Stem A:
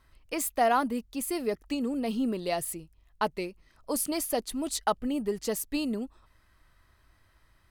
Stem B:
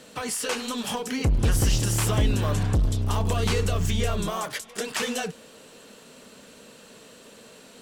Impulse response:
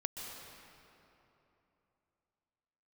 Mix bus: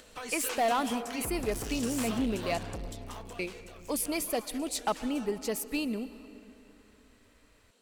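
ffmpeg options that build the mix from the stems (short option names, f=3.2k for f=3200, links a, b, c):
-filter_complex "[0:a]equalizer=f=2.4k:t=o:w=0.34:g=8.5,volume=-4dB,asplit=3[a][b][c];[a]atrim=end=2.58,asetpts=PTS-STARTPTS,afade=t=out:st=2.576:d=0.004:c=hsin[d];[b]atrim=start=2.58:end=3.39,asetpts=PTS-STARTPTS,volume=0[e];[c]atrim=start=3.39,asetpts=PTS-STARTPTS,afade=t=in:d=0.004:c=hsin[f];[d][e][f]concat=n=3:v=0:a=1,asplit=2[g][h];[h]volume=-10dB[i];[1:a]asoftclip=type=hard:threshold=-21dB,acompressor=mode=upward:threshold=-43dB:ratio=2.5,equalizer=f=85:t=o:w=2.4:g=-11.5,volume=-8dB,afade=t=out:st=2.78:d=0.7:silence=0.266073[j];[2:a]atrim=start_sample=2205[k];[i][k]afir=irnorm=-1:irlink=0[l];[g][j][l]amix=inputs=3:normalize=0,volume=22.5dB,asoftclip=hard,volume=-22.5dB"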